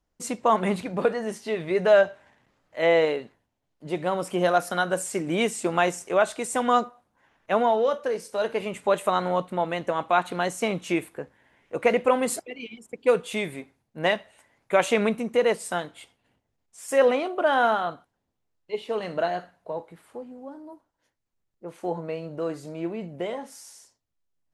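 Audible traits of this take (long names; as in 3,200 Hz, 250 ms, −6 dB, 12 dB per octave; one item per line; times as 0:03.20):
background noise floor −78 dBFS
spectral slope −4.5 dB per octave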